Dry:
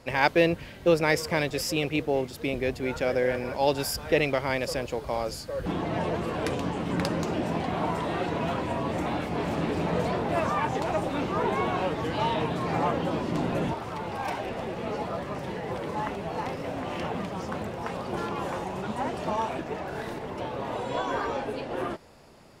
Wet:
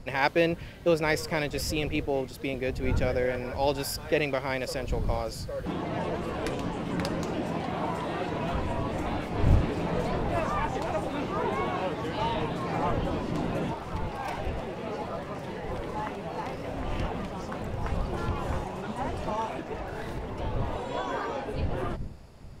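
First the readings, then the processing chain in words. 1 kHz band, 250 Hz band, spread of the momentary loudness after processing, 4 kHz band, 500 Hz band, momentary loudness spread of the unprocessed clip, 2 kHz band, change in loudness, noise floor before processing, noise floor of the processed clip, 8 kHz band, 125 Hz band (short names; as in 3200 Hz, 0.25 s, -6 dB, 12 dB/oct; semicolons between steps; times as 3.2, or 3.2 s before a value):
-2.5 dB, -2.0 dB, 8 LU, -2.5 dB, -2.5 dB, 8 LU, -2.5 dB, -2.0 dB, -42 dBFS, -40 dBFS, -2.5 dB, +1.5 dB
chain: wind noise 100 Hz -33 dBFS; gain -2.5 dB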